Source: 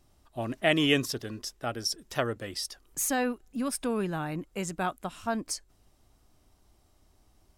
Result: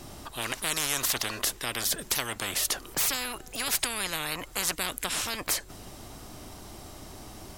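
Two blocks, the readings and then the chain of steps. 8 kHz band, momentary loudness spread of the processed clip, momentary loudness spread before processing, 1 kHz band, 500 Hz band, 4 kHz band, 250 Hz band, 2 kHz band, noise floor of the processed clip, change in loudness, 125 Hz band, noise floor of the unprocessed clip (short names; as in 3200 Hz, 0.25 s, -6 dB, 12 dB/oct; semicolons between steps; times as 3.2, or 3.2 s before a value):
+7.5 dB, 18 LU, 11 LU, -1.0 dB, -7.5 dB, +4.0 dB, -10.5 dB, +1.5 dB, -47 dBFS, +2.0 dB, -6.0 dB, -66 dBFS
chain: spectral compressor 10:1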